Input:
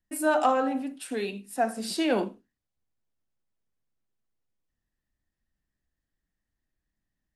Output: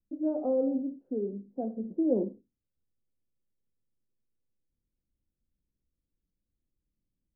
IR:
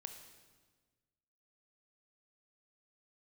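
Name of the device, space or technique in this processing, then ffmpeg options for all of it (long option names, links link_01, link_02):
under water: -af "lowpass=frequency=450:width=0.5412,lowpass=frequency=450:width=1.3066,equalizer=frequency=530:width_type=o:width=0.23:gain=7"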